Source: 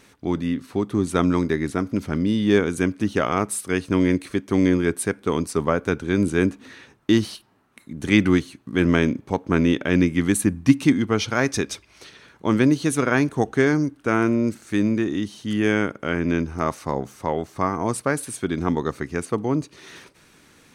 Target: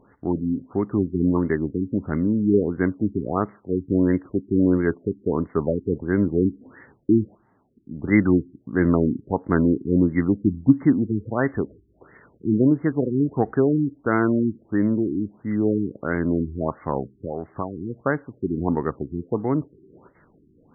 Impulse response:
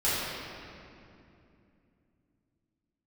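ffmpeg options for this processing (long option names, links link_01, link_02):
-filter_complex "[0:a]asettb=1/sr,asplit=3[link_01][link_02][link_03];[link_01]atrim=end=17.134[link_04];[link_02]atrim=start=17.13:end=18.05,asetpts=PTS-STARTPTS,afade=type=in:duration=0.004:curve=qsin,afade=type=out:start_time=0.916:duration=0.004:curve=qsin,acompressor=threshold=-23dB:ratio=6[link_05];[link_03]atrim=start=18.046[link_06];[link_04][link_05]acrossfade=duration=0.004:curve1=hsin:curve2=qsin[link_07];[link_07][link_06]acrossfade=duration=0.004:curve1=qsin:curve2=hsin,afftfilt=real='re*lt(b*sr/1024,400*pow(2200/400,0.5+0.5*sin(2*PI*1.5*pts/sr)))':imag='im*lt(b*sr/1024,400*pow(2200/400,0.5+0.5*sin(2*PI*1.5*pts/sr)))':win_size=1024:overlap=0.75"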